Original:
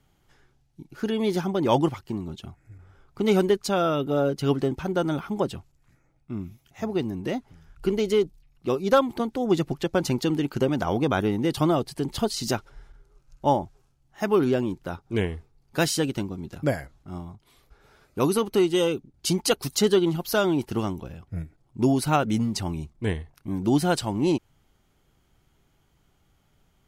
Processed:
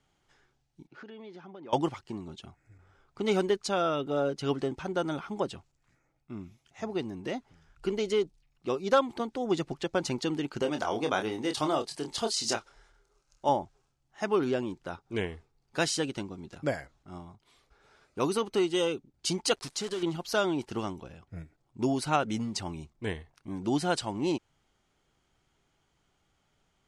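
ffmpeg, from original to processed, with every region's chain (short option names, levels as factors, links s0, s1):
-filter_complex "[0:a]asettb=1/sr,asplit=3[s0][s1][s2];[s0]atrim=end=0.874[s3];[s1]atrim=start=0.87:end=1.73,asetpts=PTS-STARTPTS,afade=t=in:d=0.004:c=qsin,afade=t=out:st=0.856:d=0.004:c=qsin,acompressor=threshold=0.0112:ratio=4:attack=3.2:release=140:knee=1:detection=peak,highpass=140,lowpass=3200[s4];[s2]atrim=start=1.726[s5];[s3][s4]acrossfade=d=0.004:c1=hsin:c2=qsin[s6];[s6][s5]acrossfade=d=0.004:c1=qsin:c2=hsin,asettb=1/sr,asplit=3[s7][s8][s9];[s7]atrim=end=10.624[s10];[s8]atrim=start=10.62:end=13.49,asetpts=PTS-STARTPTS,afade=t=in:d=0.004:c=qsin,afade=t=out:st=2.866:d=0.004:c=qsin,bass=f=250:g=-7,treble=f=4000:g=5,asplit=2[s11][s12];[s12]adelay=27,volume=0.447[s13];[s11][s13]amix=inputs=2:normalize=0,atrim=end_sample=126567[s14];[s9]atrim=start=13.486[s15];[s10][s14]acrossfade=d=0.004:c1=hsin:c2=qsin[s16];[s16][s15]acrossfade=d=0.004:c1=qsin:c2=hsin,asettb=1/sr,asplit=3[s17][s18][s19];[s17]atrim=end=19.554[s20];[s18]atrim=start=19.55:end=20.03,asetpts=PTS-STARTPTS,afade=t=in:d=0.004:c=qsin,afade=t=out:st=0.476:d=0.004:c=qsin,acompressor=threshold=0.0398:ratio=2.5:attack=3.2:release=140:knee=1:detection=peak,acrusher=bits=7:dc=4:mix=0:aa=0.000001[s21];[s19]atrim=start=20.026[s22];[s20][s21]acrossfade=d=0.004:c1=hsin:c2=qsin[s23];[s23][s22]acrossfade=d=0.004:c1=qsin:c2=hsin,lowpass=f=9000:w=0.5412,lowpass=f=9000:w=1.3066,lowshelf=f=270:g=-8.5,volume=0.708"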